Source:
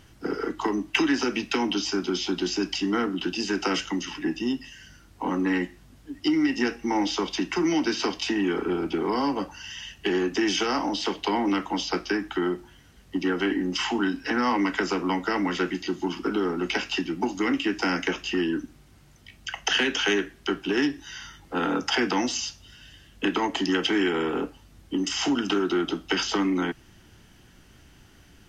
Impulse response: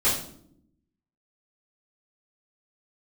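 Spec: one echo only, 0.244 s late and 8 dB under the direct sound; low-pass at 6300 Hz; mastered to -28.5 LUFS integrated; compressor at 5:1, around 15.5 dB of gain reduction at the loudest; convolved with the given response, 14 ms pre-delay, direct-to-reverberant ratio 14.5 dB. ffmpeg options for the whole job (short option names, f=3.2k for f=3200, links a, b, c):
-filter_complex "[0:a]lowpass=6.3k,acompressor=threshold=-37dB:ratio=5,aecho=1:1:244:0.398,asplit=2[a][b];[1:a]atrim=start_sample=2205,adelay=14[c];[b][c]afir=irnorm=-1:irlink=0,volume=-28dB[d];[a][d]amix=inputs=2:normalize=0,volume=10dB"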